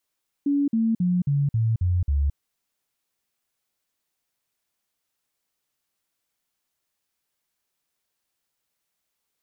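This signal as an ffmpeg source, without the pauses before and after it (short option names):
-f lavfi -i "aevalsrc='0.119*clip(min(mod(t,0.27),0.22-mod(t,0.27))/0.005,0,1)*sin(2*PI*284*pow(2,-floor(t/0.27)/3)*mod(t,0.27))':d=1.89:s=44100"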